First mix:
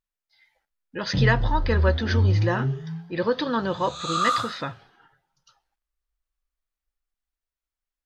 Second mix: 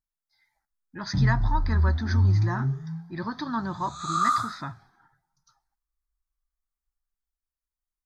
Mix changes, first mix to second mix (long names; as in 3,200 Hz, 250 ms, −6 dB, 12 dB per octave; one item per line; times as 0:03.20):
speech: add parametric band 1,500 Hz −4.5 dB 0.95 octaves
master: add phaser with its sweep stopped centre 1,200 Hz, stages 4